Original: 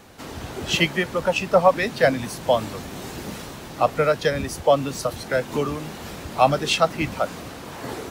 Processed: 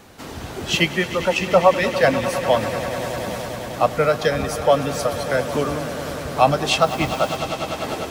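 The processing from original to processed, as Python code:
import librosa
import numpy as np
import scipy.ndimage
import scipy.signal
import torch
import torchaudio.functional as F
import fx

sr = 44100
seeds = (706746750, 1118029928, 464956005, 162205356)

y = fx.echo_swell(x, sr, ms=100, loudest=5, wet_db=-15)
y = fx.quant_dither(y, sr, seeds[0], bits=8, dither='triangular', at=(6.8, 7.36), fade=0.02)
y = y * 10.0 ** (1.5 / 20.0)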